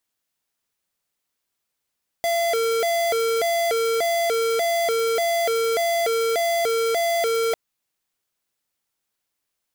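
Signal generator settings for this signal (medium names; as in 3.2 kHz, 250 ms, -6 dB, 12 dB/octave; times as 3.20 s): siren hi-lo 456–679 Hz 1.7 per s square -21.5 dBFS 5.30 s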